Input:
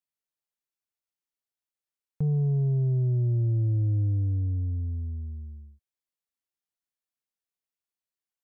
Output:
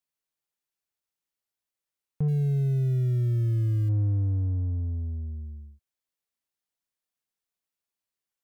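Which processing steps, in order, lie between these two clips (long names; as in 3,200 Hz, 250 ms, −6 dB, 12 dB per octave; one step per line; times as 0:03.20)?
0:02.28–0:03.89: mu-law and A-law mismatch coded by A
in parallel at −10 dB: soft clipping −38 dBFS, distortion −8 dB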